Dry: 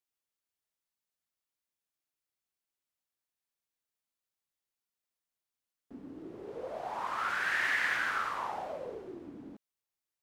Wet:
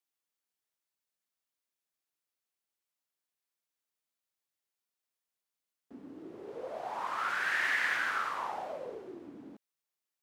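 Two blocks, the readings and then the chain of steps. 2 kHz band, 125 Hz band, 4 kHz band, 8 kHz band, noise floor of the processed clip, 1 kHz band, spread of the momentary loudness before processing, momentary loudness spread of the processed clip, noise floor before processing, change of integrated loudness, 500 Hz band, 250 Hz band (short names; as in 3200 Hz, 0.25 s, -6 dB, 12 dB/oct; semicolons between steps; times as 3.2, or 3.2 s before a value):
0.0 dB, -4.5 dB, 0.0 dB, 0.0 dB, under -85 dBFS, 0.0 dB, 20 LU, 20 LU, under -85 dBFS, 0.0 dB, -0.5 dB, -1.5 dB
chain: HPF 190 Hz 6 dB/oct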